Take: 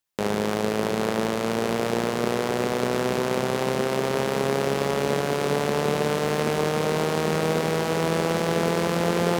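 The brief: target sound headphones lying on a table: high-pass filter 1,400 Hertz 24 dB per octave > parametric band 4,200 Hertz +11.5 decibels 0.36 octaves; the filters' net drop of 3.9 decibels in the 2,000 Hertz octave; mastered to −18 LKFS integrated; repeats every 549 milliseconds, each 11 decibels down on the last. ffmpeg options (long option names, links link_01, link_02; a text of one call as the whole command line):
ffmpeg -i in.wav -af "highpass=frequency=1400:width=0.5412,highpass=frequency=1400:width=1.3066,equalizer=frequency=2000:width_type=o:gain=-4.5,equalizer=frequency=4200:width_type=o:width=0.36:gain=11.5,aecho=1:1:549|1098|1647:0.282|0.0789|0.0221,volume=12.5dB" out.wav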